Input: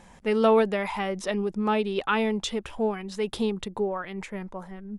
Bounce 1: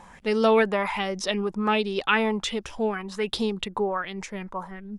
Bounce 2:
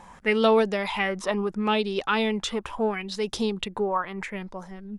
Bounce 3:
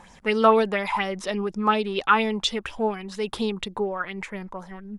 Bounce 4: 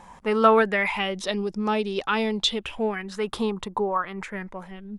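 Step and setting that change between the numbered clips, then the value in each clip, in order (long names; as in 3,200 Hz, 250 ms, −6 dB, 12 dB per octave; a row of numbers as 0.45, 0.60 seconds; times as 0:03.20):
auto-filter bell, speed: 1.3, 0.75, 4.2, 0.27 Hertz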